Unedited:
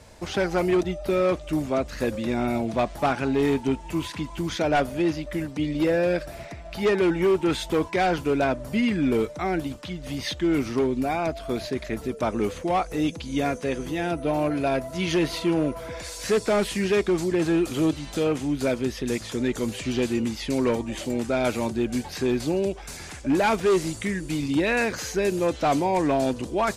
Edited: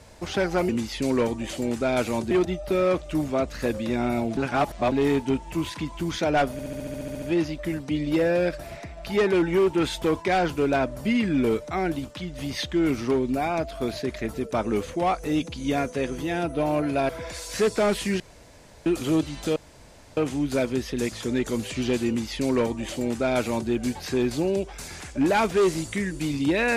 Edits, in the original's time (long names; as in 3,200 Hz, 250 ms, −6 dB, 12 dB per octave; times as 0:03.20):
0:02.75–0:03.30: reverse
0:04.90: stutter 0.07 s, 11 plays
0:14.77–0:15.79: remove
0:16.90–0:17.56: fill with room tone
0:18.26: splice in room tone 0.61 s
0:20.17–0:21.79: duplicate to 0:00.69